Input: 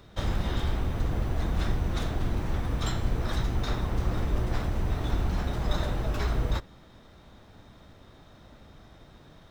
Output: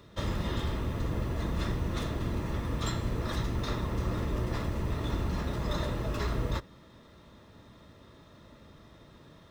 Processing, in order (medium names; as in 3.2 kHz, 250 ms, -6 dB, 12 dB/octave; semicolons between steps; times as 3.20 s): comb of notches 760 Hz